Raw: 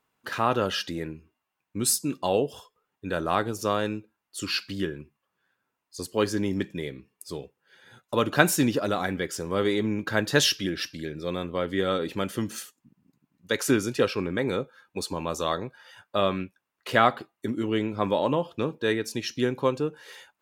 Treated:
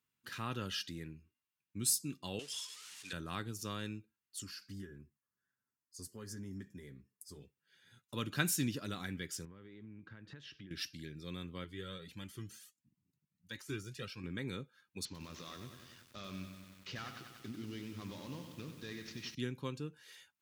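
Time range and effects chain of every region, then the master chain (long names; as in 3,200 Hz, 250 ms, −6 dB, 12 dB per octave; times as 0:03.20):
0:02.39–0:03.13: converter with a step at zero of −41 dBFS + meter weighting curve ITU-R 468
0:04.42–0:07.41: downward compressor 2.5 to 1, threshold −30 dBFS + flat-topped bell 3,100 Hz −11 dB 1.1 octaves + notch comb filter 160 Hz
0:09.45–0:10.71: low-pass filter 1,900 Hz + downward compressor, threshold −37 dBFS
0:11.64–0:14.24: notch filter 250 Hz, Q 7.8 + de-essing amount 80% + flanger whose copies keep moving one way rising 1.5 Hz
0:15.05–0:19.35: variable-slope delta modulation 32 kbit/s + downward compressor 2 to 1, threshold −31 dBFS + feedback echo at a low word length 95 ms, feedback 80%, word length 8 bits, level −8 dB
whole clip: high-pass filter 78 Hz; guitar amp tone stack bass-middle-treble 6-0-2; level +7 dB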